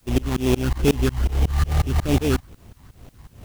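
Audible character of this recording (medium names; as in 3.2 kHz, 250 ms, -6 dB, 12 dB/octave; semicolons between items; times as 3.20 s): phasing stages 12, 2.4 Hz, lowest notch 470–3100 Hz; aliases and images of a low sample rate 3 kHz, jitter 20%; tremolo saw up 5.5 Hz, depth 100%; a quantiser's noise floor 12-bit, dither triangular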